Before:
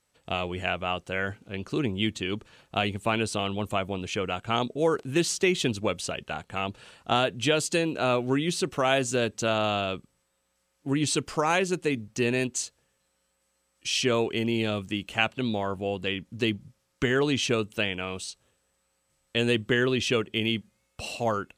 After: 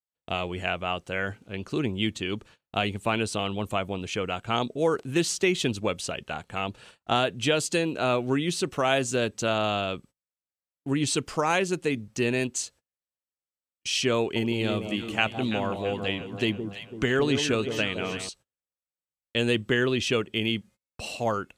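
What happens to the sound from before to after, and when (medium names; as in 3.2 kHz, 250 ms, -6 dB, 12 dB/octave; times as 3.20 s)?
14.19–18.29 s: echo whose repeats swap between lows and highs 167 ms, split 970 Hz, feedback 70%, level -7 dB
whole clip: gate -49 dBFS, range -31 dB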